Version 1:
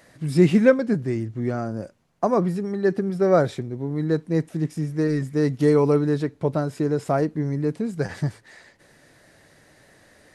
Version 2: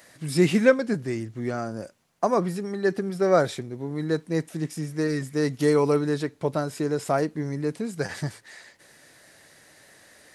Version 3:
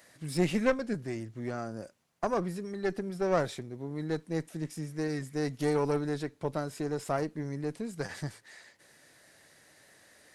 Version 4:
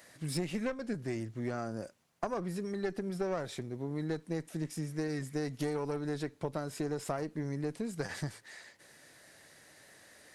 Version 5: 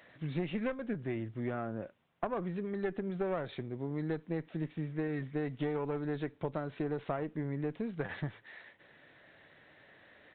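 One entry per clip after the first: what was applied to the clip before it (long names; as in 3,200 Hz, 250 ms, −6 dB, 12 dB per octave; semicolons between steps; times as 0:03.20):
spectral tilt +2 dB per octave
one-sided soft clipper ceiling −22 dBFS; level −6 dB
downward compressor 10 to 1, threshold −32 dBFS, peak gain reduction 13 dB; level +1.5 dB
downsampling to 8,000 Hz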